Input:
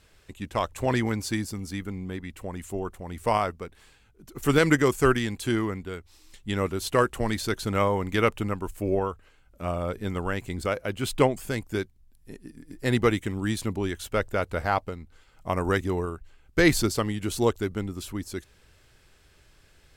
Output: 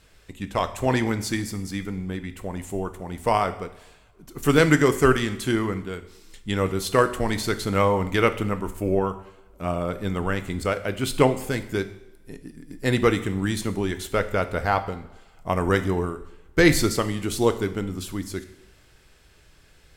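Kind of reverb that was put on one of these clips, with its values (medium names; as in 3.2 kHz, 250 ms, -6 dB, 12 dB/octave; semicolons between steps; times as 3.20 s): two-slope reverb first 0.69 s, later 1.8 s, from -18 dB, DRR 9.5 dB; trim +2.5 dB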